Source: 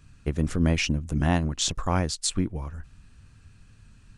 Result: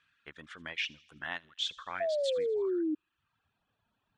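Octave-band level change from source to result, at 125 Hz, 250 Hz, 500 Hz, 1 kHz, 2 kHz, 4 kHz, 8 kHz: under -30 dB, -11.0 dB, +2.0 dB, -10.5 dB, -4.5 dB, -5.5 dB, -22.0 dB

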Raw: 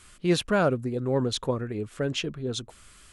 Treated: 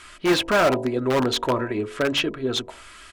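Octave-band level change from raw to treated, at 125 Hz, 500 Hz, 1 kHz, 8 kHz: -2.0, +5.0, +8.0, +3.5 dB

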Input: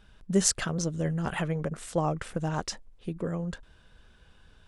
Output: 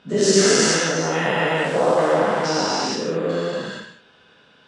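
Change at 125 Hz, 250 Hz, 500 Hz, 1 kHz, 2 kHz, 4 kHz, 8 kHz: +2.0, +7.5, +15.5, +13.5, +16.0, +14.5, +9.0 dB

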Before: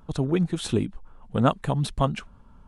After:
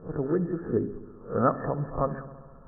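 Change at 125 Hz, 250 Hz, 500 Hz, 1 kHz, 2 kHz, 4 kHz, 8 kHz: -6.5 dB, -4.0 dB, +0.5 dB, -1.5 dB, -5.0 dB, under -40 dB, under -40 dB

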